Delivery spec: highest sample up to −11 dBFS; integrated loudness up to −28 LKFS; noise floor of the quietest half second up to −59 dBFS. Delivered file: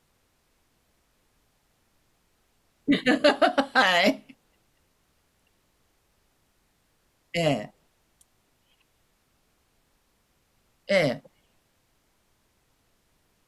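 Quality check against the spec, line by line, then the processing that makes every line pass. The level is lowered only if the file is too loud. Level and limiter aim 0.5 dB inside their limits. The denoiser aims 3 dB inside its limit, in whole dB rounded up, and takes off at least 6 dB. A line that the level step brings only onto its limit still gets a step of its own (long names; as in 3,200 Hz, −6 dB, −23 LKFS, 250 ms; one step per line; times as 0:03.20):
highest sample −8.0 dBFS: out of spec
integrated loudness −23.5 LKFS: out of spec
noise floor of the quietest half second −69 dBFS: in spec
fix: level −5 dB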